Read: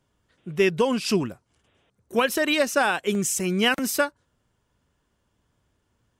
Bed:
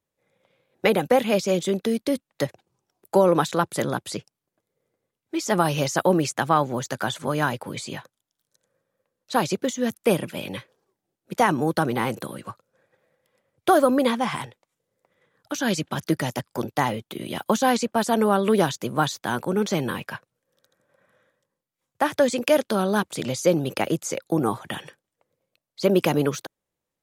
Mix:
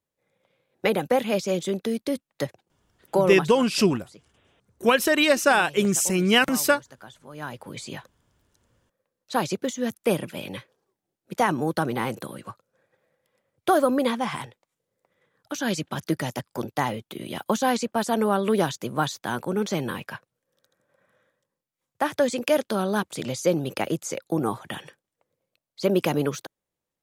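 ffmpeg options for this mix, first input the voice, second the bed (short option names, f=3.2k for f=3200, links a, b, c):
-filter_complex "[0:a]adelay=2700,volume=2.5dB[a];[1:a]volume=13.5dB,afade=t=out:st=3.18:d=0.4:silence=0.158489,afade=t=in:st=7.3:d=0.61:silence=0.149624[b];[a][b]amix=inputs=2:normalize=0"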